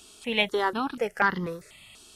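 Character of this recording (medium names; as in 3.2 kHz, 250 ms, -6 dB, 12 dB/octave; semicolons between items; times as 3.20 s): notches that jump at a steady rate 4.1 Hz 540–2500 Hz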